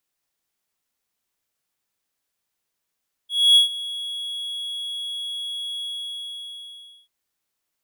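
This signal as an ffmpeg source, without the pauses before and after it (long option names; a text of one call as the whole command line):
ffmpeg -f lavfi -i "aevalsrc='0.422*(1-4*abs(mod(3340*t+0.25,1)-0.5))':duration=3.79:sample_rate=44100,afade=type=in:duration=0.269,afade=type=out:start_time=0.269:duration=0.123:silence=0.126,afade=type=out:start_time=2.54:duration=1.25" out.wav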